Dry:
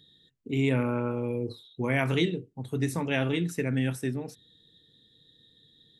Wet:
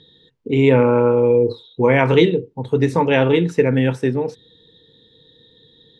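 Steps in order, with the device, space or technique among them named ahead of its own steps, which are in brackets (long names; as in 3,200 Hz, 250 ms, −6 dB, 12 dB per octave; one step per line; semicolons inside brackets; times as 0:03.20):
inside a cardboard box (low-pass filter 4,500 Hz 12 dB per octave; hollow resonant body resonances 480/900 Hz, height 11 dB, ringing for 25 ms)
level +9 dB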